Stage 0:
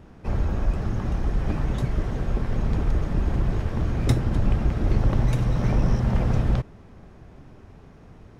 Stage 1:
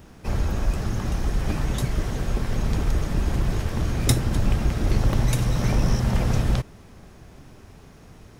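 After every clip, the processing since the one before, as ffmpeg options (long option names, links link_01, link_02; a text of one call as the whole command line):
ffmpeg -i in.wav -af "crystalizer=i=4:c=0" out.wav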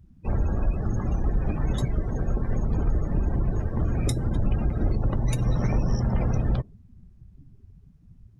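ffmpeg -i in.wav -af "alimiter=limit=-14dB:level=0:latency=1:release=158,acrusher=bits=8:mix=0:aa=0.5,afftdn=noise_reduction=29:noise_floor=-35" out.wav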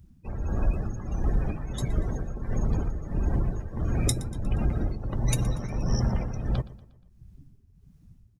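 ffmpeg -i in.wav -af "highshelf=frequency=3900:gain=9.5,tremolo=f=1.5:d=0.67,aecho=1:1:119|238|357|476:0.112|0.0539|0.0259|0.0124" out.wav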